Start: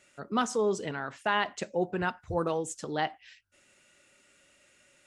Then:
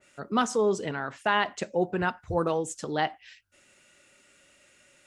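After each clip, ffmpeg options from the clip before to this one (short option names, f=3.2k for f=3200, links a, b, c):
-af "adynamicequalizer=threshold=0.00708:dfrequency=2300:dqfactor=0.7:tfrequency=2300:tqfactor=0.7:attack=5:release=100:ratio=0.375:range=1.5:mode=cutabove:tftype=highshelf,volume=3dB"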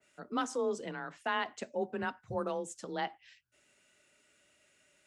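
-af "afreqshift=27,volume=-8.5dB"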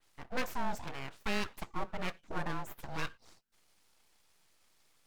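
-af "aeval=exprs='abs(val(0))':c=same,volume=1dB"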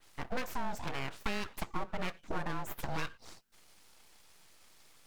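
-af "acompressor=threshold=-39dB:ratio=6,volume=8.5dB"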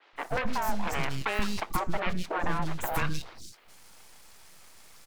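-filter_complex "[0:a]acrossover=split=330|3500[a][b][c];[a]adelay=130[d];[c]adelay=160[e];[d][b][e]amix=inputs=3:normalize=0,volume=8.5dB"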